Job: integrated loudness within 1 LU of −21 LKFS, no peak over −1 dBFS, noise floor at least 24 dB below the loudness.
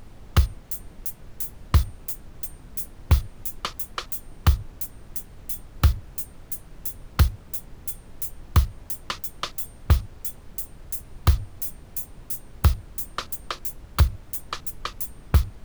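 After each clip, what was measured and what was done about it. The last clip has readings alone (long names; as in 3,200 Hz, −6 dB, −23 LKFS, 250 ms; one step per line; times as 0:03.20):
background noise floor −47 dBFS; target noise floor −52 dBFS; integrated loudness −28.0 LKFS; sample peak −5.0 dBFS; target loudness −21.0 LKFS
→ noise reduction from a noise print 6 dB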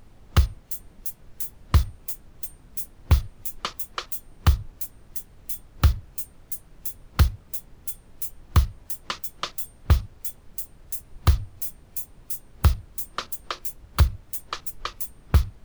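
background noise floor −53 dBFS; integrated loudness −28.0 LKFS; sample peak −5.0 dBFS; target loudness −21.0 LKFS
→ level +7 dB
brickwall limiter −1 dBFS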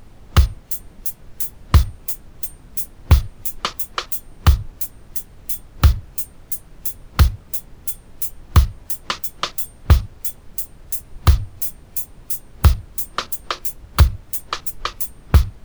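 integrated loudness −21.5 LKFS; sample peak −1.0 dBFS; background noise floor −46 dBFS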